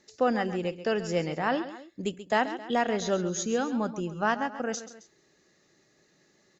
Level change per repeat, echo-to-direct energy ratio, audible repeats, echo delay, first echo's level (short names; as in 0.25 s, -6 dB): -6.0 dB, -12.0 dB, 2, 0.134 s, -13.0 dB